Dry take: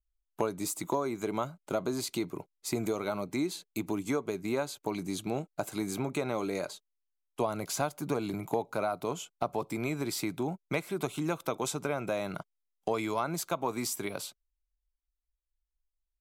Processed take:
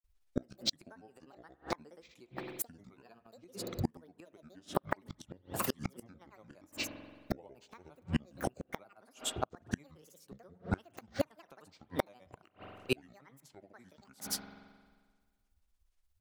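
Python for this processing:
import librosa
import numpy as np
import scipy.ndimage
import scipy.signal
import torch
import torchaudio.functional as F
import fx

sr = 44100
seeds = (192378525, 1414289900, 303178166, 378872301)

y = fx.granulator(x, sr, seeds[0], grain_ms=100.0, per_s=17.0, spray_ms=100.0, spread_st=12)
y = fx.rev_spring(y, sr, rt60_s=1.6, pass_ms=(44,), chirp_ms=45, drr_db=15.0)
y = fx.gate_flip(y, sr, shuts_db=-27.0, range_db=-34)
y = F.gain(torch.from_numpy(y), 10.5).numpy()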